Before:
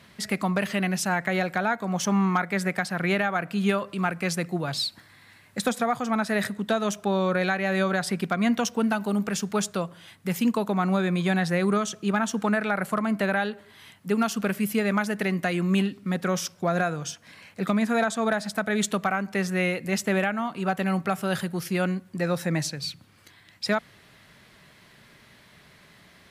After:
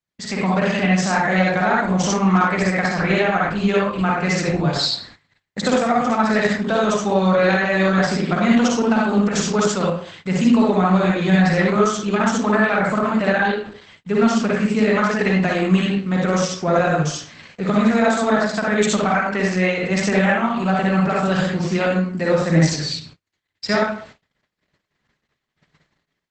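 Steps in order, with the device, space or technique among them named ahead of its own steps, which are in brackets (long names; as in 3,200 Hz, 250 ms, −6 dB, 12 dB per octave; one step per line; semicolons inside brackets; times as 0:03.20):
speakerphone in a meeting room (convolution reverb RT60 0.50 s, pre-delay 47 ms, DRR −4 dB; automatic gain control gain up to 4 dB; noise gate −40 dBFS, range −40 dB; Opus 12 kbit/s 48,000 Hz)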